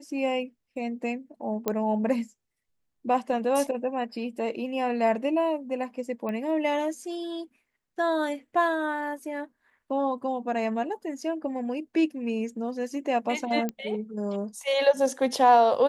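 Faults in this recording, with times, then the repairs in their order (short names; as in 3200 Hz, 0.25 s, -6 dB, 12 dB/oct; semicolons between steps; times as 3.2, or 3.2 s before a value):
1.68 pop -12 dBFS
6.29 pop -22 dBFS
13.69 pop -17 dBFS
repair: de-click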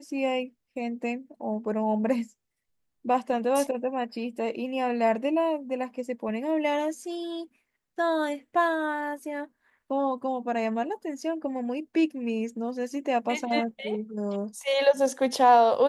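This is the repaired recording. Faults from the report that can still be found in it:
1.68 pop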